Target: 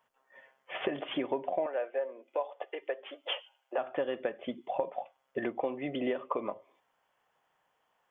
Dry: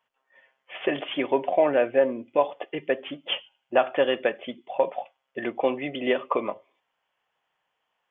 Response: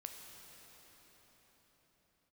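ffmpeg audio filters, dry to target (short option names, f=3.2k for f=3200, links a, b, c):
-filter_complex "[0:a]equalizer=f=2.8k:t=o:w=1.2:g=-7.5,acompressor=threshold=-36dB:ratio=4,asettb=1/sr,asplit=3[a][b][c];[a]atrim=end=1.664[d];[b]atrim=start=1.66:end=3.78,asetpts=PTS-STARTPTS,afade=t=in:d=0.004:c=qsin,afade=t=out:st=2.116:d=0.004:c=qsin,highpass=f=460:w=0.5412,highpass=f=460:w=1.3066[e];[c]atrim=start=3.776[f];[d][e]acrossfade=d=0.004:c1=hsin:c2=qsin[g];[g][f]acrossfade=d=0.004:c1=qsin:c2=hsin,volume=4.5dB"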